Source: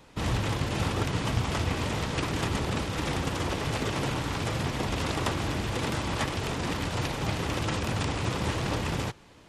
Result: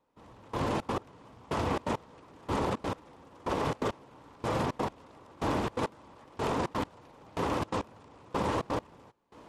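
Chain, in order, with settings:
graphic EQ with 10 bands 250 Hz +7 dB, 500 Hz +8 dB, 1,000 Hz +11 dB
brickwall limiter −15 dBFS, peak gain reduction 11.5 dB
gate pattern "......xxx.x" 169 BPM −24 dB
level −5.5 dB

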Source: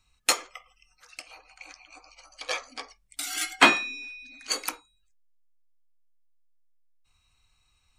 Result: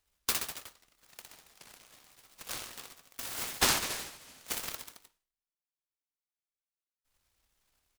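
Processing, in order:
guitar amp tone stack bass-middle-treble 5-5-5
reverse bouncing-ball delay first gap 60 ms, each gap 1.1×, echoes 5
short delay modulated by noise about 2,300 Hz, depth 0.14 ms

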